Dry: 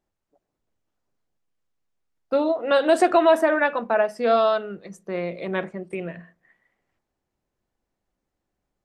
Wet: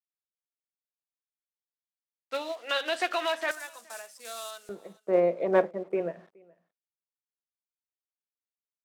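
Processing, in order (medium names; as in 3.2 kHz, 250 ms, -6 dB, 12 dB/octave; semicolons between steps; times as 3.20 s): block-companded coder 5-bit; peak limiter -11.5 dBFS, peak gain reduction 5.5 dB; bit crusher 8-bit; band-pass filter 3 kHz, Q 1.3, from 3.51 s 8 kHz, from 4.69 s 580 Hz; delay 421 ms -21.5 dB; upward expansion 1.5:1, over -44 dBFS; trim +8.5 dB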